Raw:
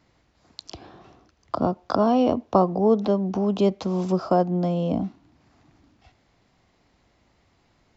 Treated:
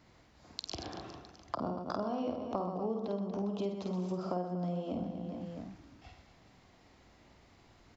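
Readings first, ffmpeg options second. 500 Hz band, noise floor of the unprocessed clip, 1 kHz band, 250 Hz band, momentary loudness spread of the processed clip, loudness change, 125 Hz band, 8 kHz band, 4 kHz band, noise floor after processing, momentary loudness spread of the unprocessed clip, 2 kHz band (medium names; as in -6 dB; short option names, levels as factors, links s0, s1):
-14.0 dB, -65 dBFS, -14.0 dB, -13.0 dB, 14 LU, -14.5 dB, -12.0 dB, no reading, -6.0 dB, -63 dBFS, 9 LU, -9.5 dB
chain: -af "aecho=1:1:50|125|237.5|406.2|659.4:0.631|0.398|0.251|0.158|0.1,acompressor=threshold=0.0178:ratio=5"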